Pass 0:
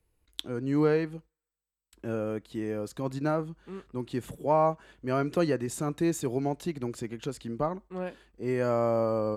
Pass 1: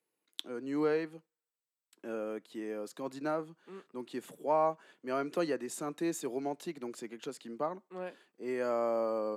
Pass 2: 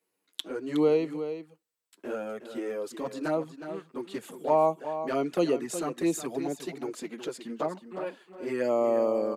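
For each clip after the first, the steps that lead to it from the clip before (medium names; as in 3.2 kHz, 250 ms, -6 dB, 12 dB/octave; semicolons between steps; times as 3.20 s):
Bessel high-pass 290 Hz, order 8; trim -4 dB
touch-sensitive flanger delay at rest 10.7 ms, full sweep at -28.5 dBFS; delay 365 ms -10.5 dB; trim +8 dB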